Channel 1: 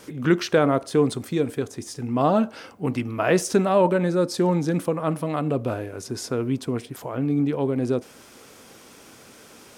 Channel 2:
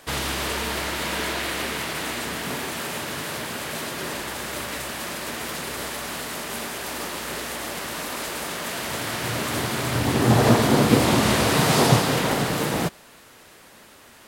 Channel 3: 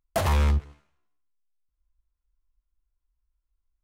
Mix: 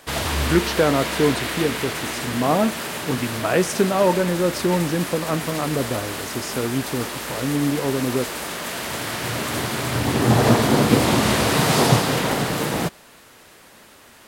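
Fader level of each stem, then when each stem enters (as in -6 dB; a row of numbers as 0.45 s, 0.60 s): +0.5 dB, +1.0 dB, -4.5 dB; 0.25 s, 0.00 s, 0.00 s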